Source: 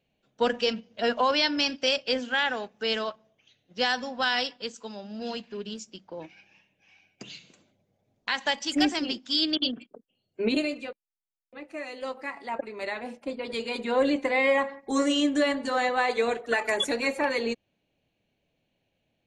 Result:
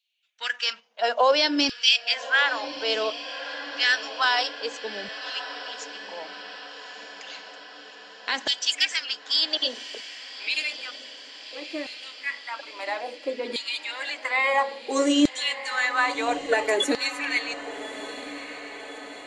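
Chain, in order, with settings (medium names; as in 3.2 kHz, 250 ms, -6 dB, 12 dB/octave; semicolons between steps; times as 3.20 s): LFO high-pass saw down 0.59 Hz 270–3900 Hz; dynamic bell 6.6 kHz, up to +5 dB, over -42 dBFS, Q 0.86; echo that smears into a reverb 1216 ms, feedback 63%, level -13 dB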